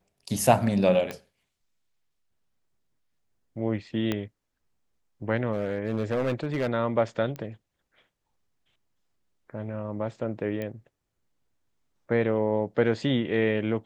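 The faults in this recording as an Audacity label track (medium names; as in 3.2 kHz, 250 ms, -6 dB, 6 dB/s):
1.110000	1.110000	pop -18 dBFS
4.120000	4.120000	pop -14 dBFS
5.520000	6.680000	clipped -22 dBFS
7.360000	7.360000	pop -23 dBFS
10.620000	10.620000	pop -21 dBFS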